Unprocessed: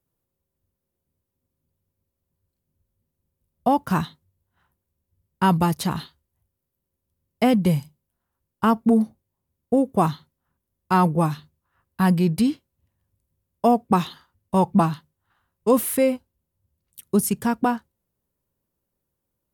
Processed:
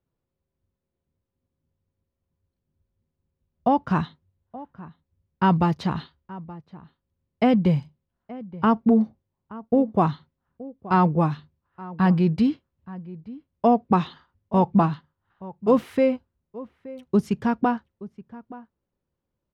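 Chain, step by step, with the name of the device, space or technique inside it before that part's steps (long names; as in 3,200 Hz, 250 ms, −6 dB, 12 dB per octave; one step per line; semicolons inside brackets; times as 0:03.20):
shout across a valley (high-frequency loss of the air 200 metres; slap from a distant wall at 150 metres, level −18 dB)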